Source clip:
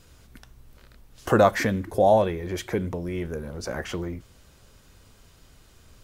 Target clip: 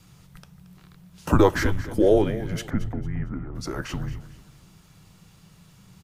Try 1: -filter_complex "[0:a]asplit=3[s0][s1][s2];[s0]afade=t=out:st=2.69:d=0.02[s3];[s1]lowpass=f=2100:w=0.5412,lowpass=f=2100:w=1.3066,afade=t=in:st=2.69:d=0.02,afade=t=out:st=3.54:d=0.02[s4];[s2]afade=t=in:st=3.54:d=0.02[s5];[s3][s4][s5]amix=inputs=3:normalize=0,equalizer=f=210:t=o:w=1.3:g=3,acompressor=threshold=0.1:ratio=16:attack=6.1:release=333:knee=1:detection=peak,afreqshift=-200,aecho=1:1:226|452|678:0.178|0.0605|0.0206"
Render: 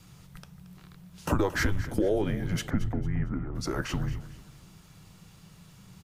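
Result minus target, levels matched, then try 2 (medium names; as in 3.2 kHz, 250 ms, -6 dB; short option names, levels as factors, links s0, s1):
compression: peak gain reduction +11 dB
-filter_complex "[0:a]asplit=3[s0][s1][s2];[s0]afade=t=out:st=2.69:d=0.02[s3];[s1]lowpass=f=2100:w=0.5412,lowpass=f=2100:w=1.3066,afade=t=in:st=2.69:d=0.02,afade=t=out:st=3.54:d=0.02[s4];[s2]afade=t=in:st=3.54:d=0.02[s5];[s3][s4][s5]amix=inputs=3:normalize=0,equalizer=f=210:t=o:w=1.3:g=3,afreqshift=-200,aecho=1:1:226|452|678:0.178|0.0605|0.0206"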